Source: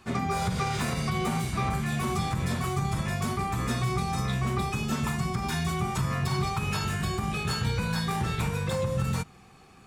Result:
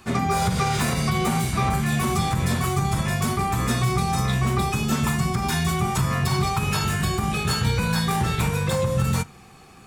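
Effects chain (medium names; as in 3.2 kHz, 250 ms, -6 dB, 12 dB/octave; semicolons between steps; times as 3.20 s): treble shelf 8.8 kHz +6.5 dB; reverberation RT60 0.30 s, pre-delay 14 ms, DRR 16.5 dB; trim +5.5 dB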